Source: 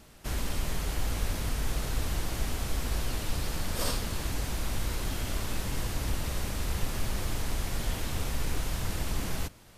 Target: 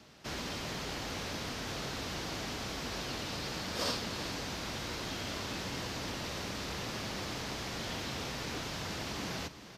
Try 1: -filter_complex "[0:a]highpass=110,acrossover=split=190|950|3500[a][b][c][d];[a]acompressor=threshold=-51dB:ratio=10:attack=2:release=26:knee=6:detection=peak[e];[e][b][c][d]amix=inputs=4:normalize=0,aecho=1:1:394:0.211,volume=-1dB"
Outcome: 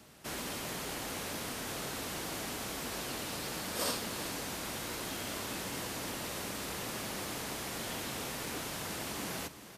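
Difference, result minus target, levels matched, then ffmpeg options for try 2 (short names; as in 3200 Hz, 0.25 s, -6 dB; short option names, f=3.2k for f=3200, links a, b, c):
compressor: peak gain reduction +7 dB; 8000 Hz band +4.5 dB
-filter_complex "[0:a]highpass=110,highshelf=f=7.2k:t=q:w=1.5:g=-10.5,acrossover=split=190|950|3500[a][b][c][d];[a]acompressor=threshold=-43dB:ratio=10:attack=2:release=26:knee=6:detection=peak[e];[e][b][c][d]amix=inputs=4:normalize=0,aecho=1:1:394:0.211,volume=-1dB"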